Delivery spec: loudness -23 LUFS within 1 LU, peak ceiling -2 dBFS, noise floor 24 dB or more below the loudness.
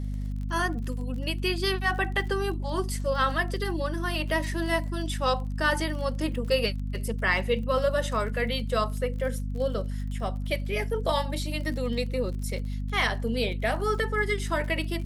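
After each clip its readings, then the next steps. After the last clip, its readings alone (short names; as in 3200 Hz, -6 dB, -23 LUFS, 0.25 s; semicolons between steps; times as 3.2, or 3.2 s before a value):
ticks 32/s; hum 50 Hz; harmonics up to 250 Hz; hum level -28 dBFS; loudness -28.5 LUFS; peak -11.0 dBFS; loudness target -23.0 LUFS
-> de-click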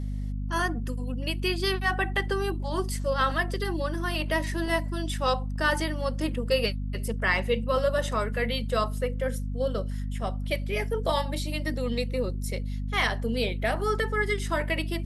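ticks 0.066/s; hum 50 Hz; harmonics up to 250 Hz; hum level -28 dBFS
-> notches 50/100/150/200/250 Hz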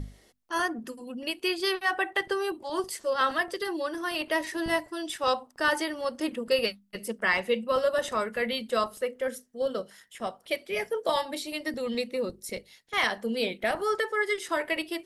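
hum none; loudness -29.5 LUFS; peak -12.0 dBFS; loudness target -23.0 LUFS
-> gain +6.5 dB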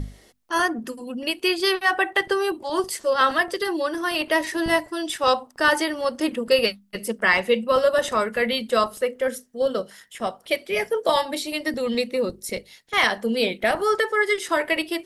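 loudness -23.0 LUFS; peak -5.5 dBFS; noise floor -55 dBFS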